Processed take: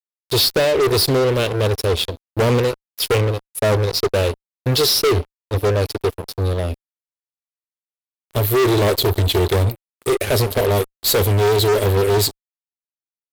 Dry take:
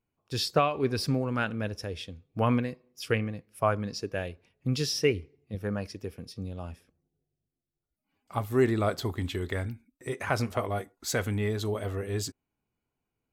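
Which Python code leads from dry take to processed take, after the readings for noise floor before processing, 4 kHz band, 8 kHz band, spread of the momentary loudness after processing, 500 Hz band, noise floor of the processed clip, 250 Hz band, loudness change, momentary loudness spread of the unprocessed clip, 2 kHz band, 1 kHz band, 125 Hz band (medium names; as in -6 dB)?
under -85 dBFS, +16.5 dB, +14.0 dB, 9 LU, +13.5 dB, under -85 dBFS, +7.5 dB, +12.5 dB, 13 LU, +9.0 dB, +8.5 dB, +12.5 dB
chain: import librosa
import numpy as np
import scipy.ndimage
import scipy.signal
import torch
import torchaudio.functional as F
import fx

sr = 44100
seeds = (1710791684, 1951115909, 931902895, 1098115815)

y = fx.curve_eq(x, sr, hz=(100.0, 210.0, 400.0, 610.0, 1000.0, 4100.0, 6100.0, 13000.0), db=(0, -21, 5, -1, -27, 6, -9, 10))
y = fx.fuzz(y, sr, gain_db=36.0, gate_db=-44.0)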